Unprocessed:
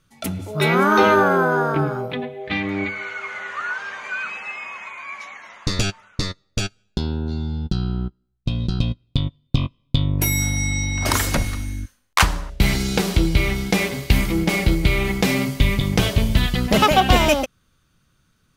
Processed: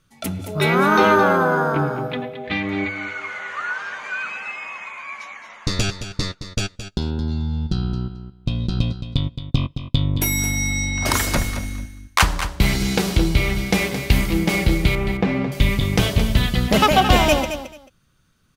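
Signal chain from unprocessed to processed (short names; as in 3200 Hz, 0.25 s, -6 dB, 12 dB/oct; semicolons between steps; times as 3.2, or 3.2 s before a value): 14.95–15.52 Bessel low-pass 1500 Hz, order 2; on a send: feedback echo 0.219 s, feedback 18%, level -10.5 dB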